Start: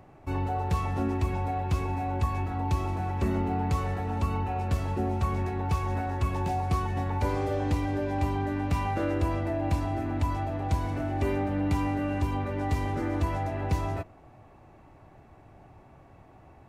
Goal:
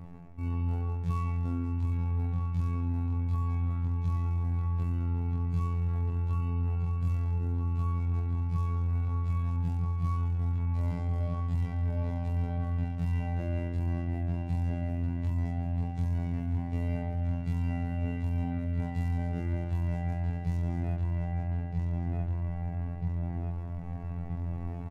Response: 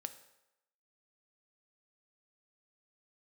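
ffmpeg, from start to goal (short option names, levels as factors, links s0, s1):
-filter_complex "[0:a]bass=f=250:g=14,treble=f=4000:g=0,aecho=1:1:7.2:0.86,asplit=2[s0][s1];[s1]adelay=858,lowpass=f=2800:p=1,volume=0.562,asplit=2[s2][s3];[s3]adelay=858,lowpass=f=2800:p=1,volume=0.39,asplit=2[s4][s5];[s5]adelay=858,lowpass=f=2800:p=1,volume=0.39,asplit=2[s6][s7];[s7]adelay=858,lowpass=f=2800:p=1,volume=0.39,asplit=2[s8][s9];[s9]adelay=858,lowpass=f=2800:p=1,volume=0.39[s10];[s2][s4][s6][s8][s10]amix=inputs=5:normalize=0[s11];[s0][s11]amix=inputs=2:normalize=0,dynaudnorm=f=770:g=7:m=3.76,afftfilt=real='hypot(re,im)*cos(PI*b)':imag='0':win_size=2048:overlap=0.75,areverse,acompressor=threshold=0.0447:ratio=8,areverse,atempo=0.67"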